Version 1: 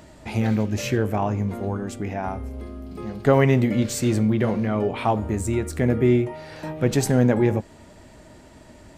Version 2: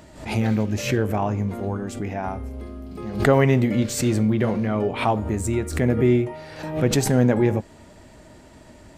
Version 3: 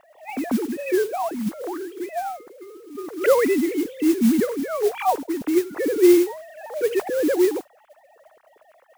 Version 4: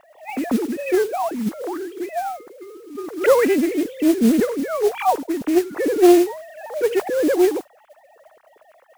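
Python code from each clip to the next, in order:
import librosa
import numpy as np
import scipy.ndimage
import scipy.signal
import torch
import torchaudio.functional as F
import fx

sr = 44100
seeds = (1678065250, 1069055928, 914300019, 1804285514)

y1 = fx.pre_swell(x, sr, db_per_s=110.0)
y2 = fx.sine_speech(y1, sr)
y2 = fx.high_shelf(y2, sr, hz=2700.0, db=-9.0)
y2 = fx.mod_noise(y2, sr, seeds[0], snr_db=18)
y3 = fx.doppler_dist(y2, sr, depth_ms=0.41)
y3 = y3 * librosa.db_to_amplitude(2.5)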